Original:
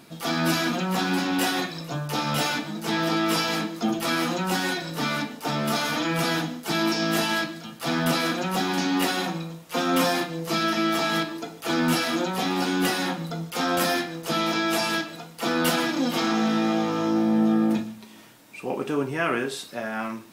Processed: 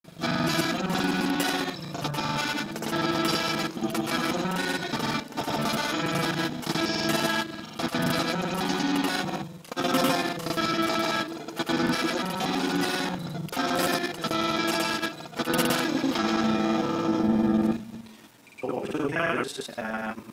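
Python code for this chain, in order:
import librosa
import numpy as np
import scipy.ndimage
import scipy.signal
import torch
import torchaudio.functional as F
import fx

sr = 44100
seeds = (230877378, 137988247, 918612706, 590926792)

y = fx.local_reverse(x, sr, ms=41.0)
y = fx.granulator(y, sr, seeds[0], grain_ms=100.0, per_s=20.0, spray_ms=100.0, spread_st=0)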